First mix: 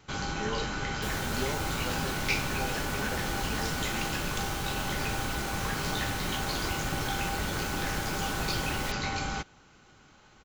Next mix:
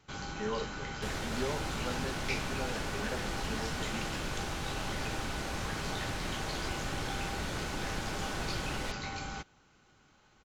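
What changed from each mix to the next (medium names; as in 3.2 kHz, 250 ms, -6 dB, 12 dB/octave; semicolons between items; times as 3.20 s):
first sound -7.0 dB; second sound: add distance through air 53 m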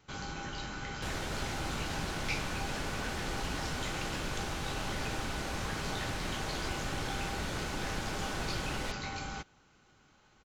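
speech: muted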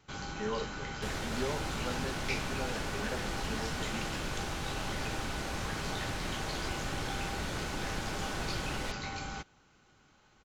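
speech: unmuted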